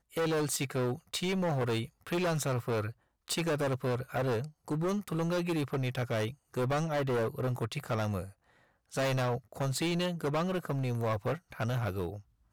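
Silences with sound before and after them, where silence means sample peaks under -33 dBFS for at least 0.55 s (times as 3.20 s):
8.23–8.95 s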